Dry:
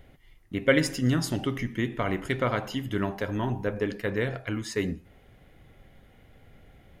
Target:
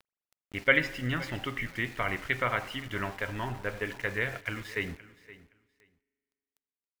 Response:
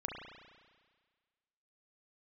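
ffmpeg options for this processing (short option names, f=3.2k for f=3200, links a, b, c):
-filter_complex "[0:a]lowpass=f=2.4k:t=q:w=1.6,equalizer=f=240:w=0.42:g=-11,aeval=exprs='val(0)*gte(abs(val(0)),0.00562)':c=same,aecho=1:1:520|1040:0.119|0.0202,asplit=2[a][b];[1:a]atrim=start_sample=2205,asetrate=36162,aresample=44100[c];[b][c]afir=irnorm=-1:irlink=0,volume=-21dB[d];[a][d]amix=inputs=2:normalize=0"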